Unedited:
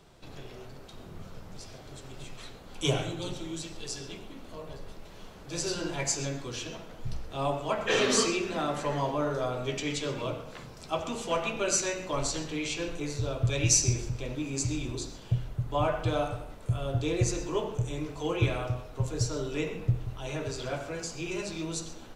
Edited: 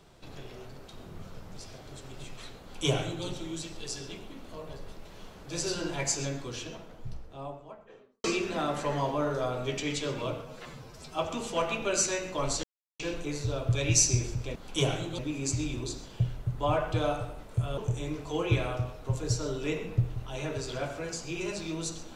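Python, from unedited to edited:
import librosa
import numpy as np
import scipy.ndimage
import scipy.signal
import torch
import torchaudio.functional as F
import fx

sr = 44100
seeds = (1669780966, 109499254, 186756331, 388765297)

y = fx.studio_fade_out(x, sr, start_s=6.23, length_s=2.01)
y = fx.edit(y, sr, fx.duplicate(start_s=2.62, length_s=0.63, to_s=14.3),
    fx.stretch_span(start_s=10.42, length_s=0.51, factor=1.5),
    fx.silence(start_s=12.38, length_s=0.36),
    fx.cut(start_s=16.89, length_s=0.79), tone=tone)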